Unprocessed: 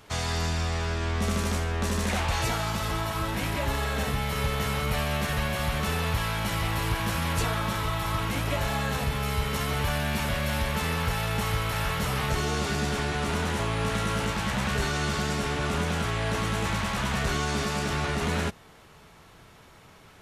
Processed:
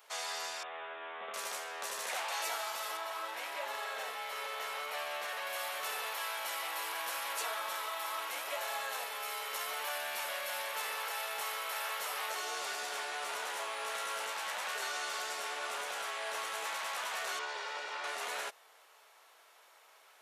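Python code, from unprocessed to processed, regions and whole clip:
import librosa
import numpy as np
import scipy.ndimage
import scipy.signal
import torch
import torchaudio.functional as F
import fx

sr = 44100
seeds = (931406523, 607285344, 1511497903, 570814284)

y = fx.chain(x, sr, fx.steep_lowpass(hz=3600.0, slope=96),
    fx.high_shelf(hz=2600.0, db=-8.5), at=(0.63, 1.34))
y = fx.chain(y, sr, fx.highpass(hz=110.0, slope=12),
    fx.high_shelf(hz=7000.0, db=-10.0), at=(2.97, 5.47))
y = fx.chain(y, sr, fx.lower_of_two(delay_ms=2.1),
    fx.lowpass(hz=4100.0, slope=12), at=(17.39, 18.04))
y = scipy.signal.sosfilt(scipy.signal.butter(4, 540.0, 'highpass', fs=sr, output='sos'), y)
y = fx.high_shelf(y, sr, hz=12000.0, db=10.5)
y = F.gain(torch.from_numpy(y), -7.0).numpy()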